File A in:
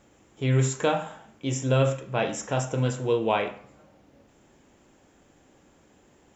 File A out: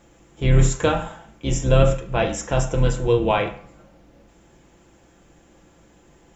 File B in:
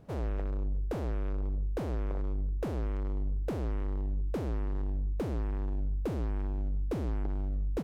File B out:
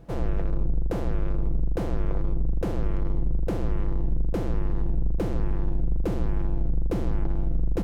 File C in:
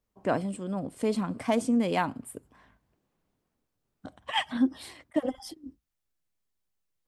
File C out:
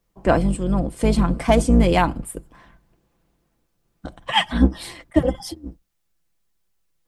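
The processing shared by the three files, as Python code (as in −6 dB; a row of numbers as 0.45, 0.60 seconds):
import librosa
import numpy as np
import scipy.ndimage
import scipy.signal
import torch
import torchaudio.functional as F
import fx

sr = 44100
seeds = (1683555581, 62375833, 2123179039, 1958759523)

y = fx.octave_divider(x, sr, octaves=2, level_db=1.0)
y = y + 0.39 * np.pad(y, (int(5.9 * sr / 1000.0), 0))[:len(y)]
y = y * 10.0 ** (-22 / 20.0) / np.sqrt(np.mean(np.square(y)))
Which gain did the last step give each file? +3.5, +4.5, +9.0 decibels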